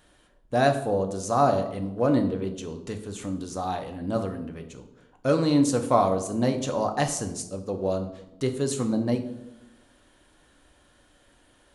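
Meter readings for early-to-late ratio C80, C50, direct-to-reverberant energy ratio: 13.0 dB, 10.5 dB, 5.5 dB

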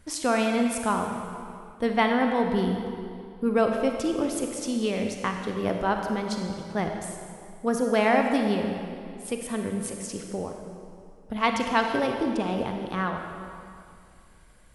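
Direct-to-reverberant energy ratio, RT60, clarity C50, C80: 3.0 dB, 2.4 s, 4.0 dB, 5.0 dB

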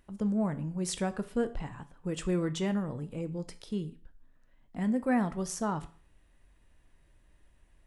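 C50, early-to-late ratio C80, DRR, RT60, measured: 17.0 dB, 21.0 dB, 10.5 dB, 0.45 s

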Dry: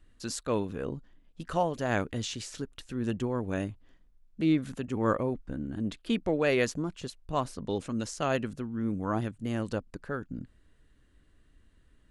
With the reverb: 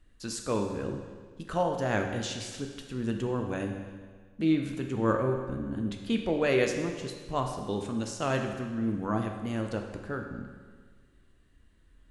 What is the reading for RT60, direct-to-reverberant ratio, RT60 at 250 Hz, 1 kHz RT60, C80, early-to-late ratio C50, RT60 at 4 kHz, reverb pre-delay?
1.6 s, 3.0 dB, 1.6 s, 1.6 s, 7.0 dB, 5.5 dB, 1.5 s, 11 ms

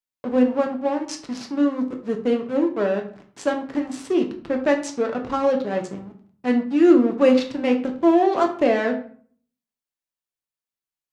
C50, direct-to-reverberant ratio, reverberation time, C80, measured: 10.5 dB, 3.0 dB, 0.50 s, 14.5 dB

